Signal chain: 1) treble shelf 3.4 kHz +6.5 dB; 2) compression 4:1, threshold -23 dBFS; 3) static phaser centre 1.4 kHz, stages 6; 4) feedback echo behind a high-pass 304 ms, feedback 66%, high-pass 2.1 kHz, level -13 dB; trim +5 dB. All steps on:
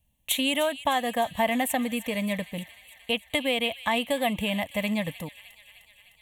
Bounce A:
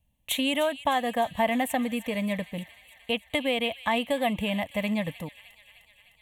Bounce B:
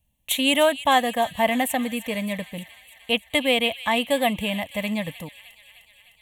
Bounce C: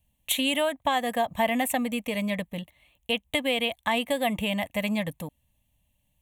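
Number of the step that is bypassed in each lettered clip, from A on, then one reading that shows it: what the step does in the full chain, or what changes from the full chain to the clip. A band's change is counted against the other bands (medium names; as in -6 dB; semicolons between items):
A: 1, 8 kHz band -5.0 dB; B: 2, mean gain reduction 2.5 dB; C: 4, echo-to-direct -15.5 dB to none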